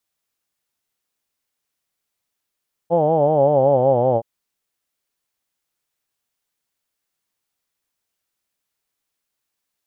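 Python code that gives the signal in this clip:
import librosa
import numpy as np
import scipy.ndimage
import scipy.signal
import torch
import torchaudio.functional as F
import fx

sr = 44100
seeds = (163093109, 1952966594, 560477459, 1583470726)

y = fx.formant_vowel(sr, seeds[0], length_s=1.32, hz=164.0, glide_st=-5.5, vibrato_hz=5.3, vibrato_st=1.05, f1_hz=550.0, f2_hz=820.0, f3_hz=3100.0)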